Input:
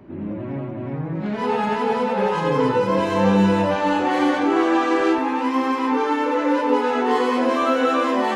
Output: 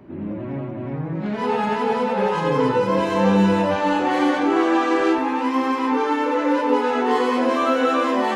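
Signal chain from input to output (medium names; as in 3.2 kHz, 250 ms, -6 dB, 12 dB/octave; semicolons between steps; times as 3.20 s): hum notches 50/100 Hz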